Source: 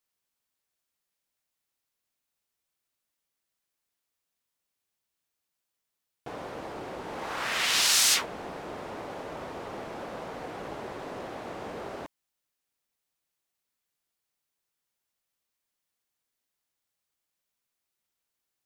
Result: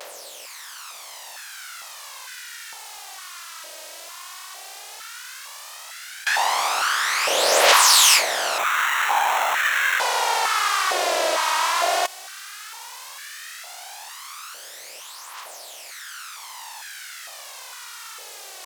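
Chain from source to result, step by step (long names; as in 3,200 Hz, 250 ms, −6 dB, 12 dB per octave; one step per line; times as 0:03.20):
compressor on every frequency bin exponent 0.4
phase shifter 0.13 Hz, delay 3.2 ms, feedback 57%
pitch vibrato 0.78 Hz 49 cents
0:08.58–0:10.00: sample-rate reduction 4,800 Hz, jitter 0%
high-pass on a step sequencer 2.2 Hz 570–1,600 Hz
level +3 dB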